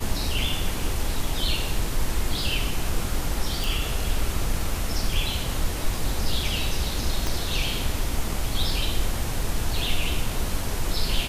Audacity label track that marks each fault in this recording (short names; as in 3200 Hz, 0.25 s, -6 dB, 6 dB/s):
3.640000	3.640000	pop
7.270000	7.270000	pop